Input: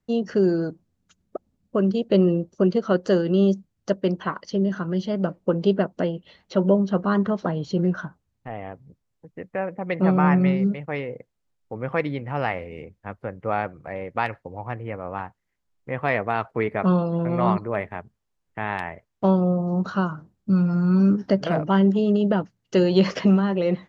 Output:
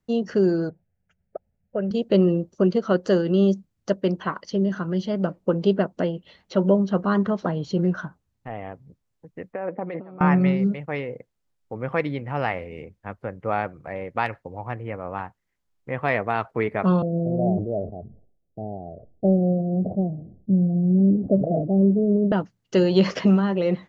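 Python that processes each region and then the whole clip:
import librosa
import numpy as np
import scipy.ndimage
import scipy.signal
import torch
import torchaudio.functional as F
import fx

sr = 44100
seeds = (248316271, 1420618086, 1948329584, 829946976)

y = fx.chain(x, sr, fx.lowpass(hz=2600.0, slope=12),
    fx.fixed_phaser(hz=1100.0, stages=6), at=(0.69, 1.91))
y = fx.chain(y, sr, fx.high_shelf(hz=2100.0, db=-11.5),
    fx.over_compress(threshold_db=-31.0, ratio=-1.0),
    fx.bandpass_edges(low_hz=250.0, high_hz=4800.0), at=(9.53, 10.21))
y = fx.chain(y, sr, fx.steep_lowpass(hz=730.0, slope=96),
    fx.sustainer(db_per_s=86.0), at=(17.02, 22.32))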